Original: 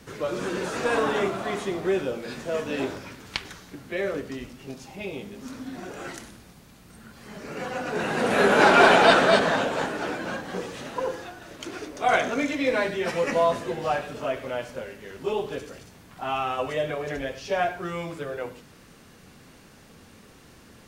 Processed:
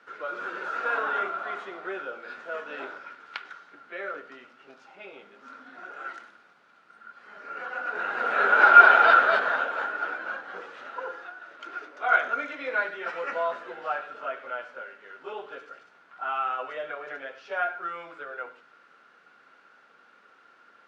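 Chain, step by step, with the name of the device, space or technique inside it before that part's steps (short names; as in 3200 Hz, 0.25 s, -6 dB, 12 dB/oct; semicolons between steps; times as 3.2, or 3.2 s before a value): tin-can telephone (BPF 540–2900 Hz; small resonant body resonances 1400 Hz, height 17 dB, ringing for 25 ms); gain -6 dB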